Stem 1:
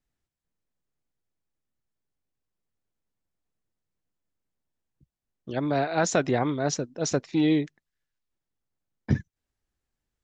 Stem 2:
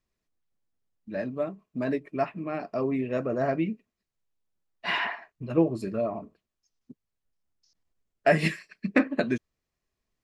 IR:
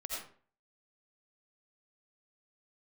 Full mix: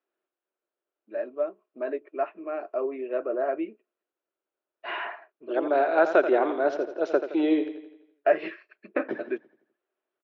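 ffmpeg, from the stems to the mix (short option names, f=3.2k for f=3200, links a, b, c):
-filter_complex "[0:a]volume=-0.5dB,asplit=3[a][b][c];[b]volume=-10.5dB[d];[1:a]deesser=0.85,volume=-4.5dB[e];[c]apad=whole_len=451180[f];[e][f]sidechaincompress=threshold=-33dB:ratio=8:attack=5:release=123[g];[d]aecho=0:1:84|168|252|336|420|504|588:1|0.51|0.26|0.133|0.0677|0.0345|0.0176[h];[a][g][h]amix=inputs=3:normalize=0,highpass=f=350:w=0.5412,highpass=f=350:w=1.3066,equalizer=f=360:t=q:w=4:g=10,equalizer=f=610:t=q:w=4:g=7,equalizer=f=1.4k:t=q:w=4:g=6,equalizer=f=2k:t=q:w=4:g=-5,lowpass=f=3k:w=0.5412,lowpass=f=3k:w=1.3066"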